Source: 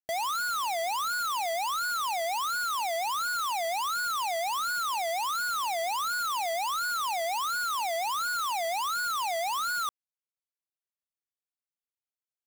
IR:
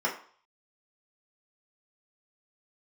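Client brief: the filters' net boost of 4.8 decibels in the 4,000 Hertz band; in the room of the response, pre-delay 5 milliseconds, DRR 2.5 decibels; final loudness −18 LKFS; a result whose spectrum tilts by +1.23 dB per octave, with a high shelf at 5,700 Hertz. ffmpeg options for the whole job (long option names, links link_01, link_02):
-filter_complex "[0:a]equalizer=frequency=4000:width_type=o:gain=4,highshelf=frequency=5700:gain=4.5,asplit=2[link_01][link_02];[1:a]atrim=start_sample=2205,adelay=5[link_03];[link_02][link_03]afir=irnorm=-1:irlink=0,volume=-12.5dB[link_04];[link_01][link_04]amix=inputs=2:normalize=0,volume=8dB"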